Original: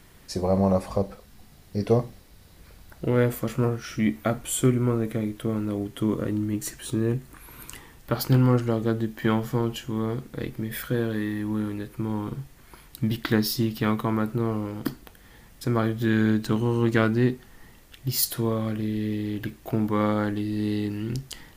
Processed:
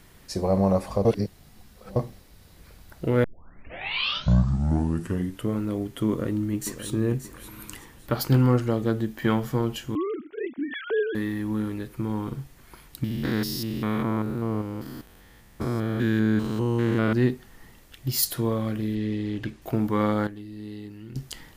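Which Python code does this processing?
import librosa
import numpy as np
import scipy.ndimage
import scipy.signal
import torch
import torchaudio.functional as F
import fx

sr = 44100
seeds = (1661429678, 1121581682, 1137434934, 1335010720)

y = fx.echo_throw(x, sr, start_s=6.08, length_s=0.84, ms=580, feedback_pct=30, wet_db=-11.5)
y = fx.sine_speech(y, sr, at=(9.95, 11.15))
y = fx.spec_steps(y, sr, hold_ms=200, at=(13.04, 17.13))
y = fx.lowpass(y, sr, hz=7500.0, slope=12, at=(18.95, 19.62))
y = fx.edit(y, sr, fx.reverse_span(start_s=1.05, length_s=0.91),
    fx.tape_start(start_s=3.24, length_s=2.33),
    fx.clip_gain(start_s=20.27, length_s=0.89, db=-11.5), tone=tone)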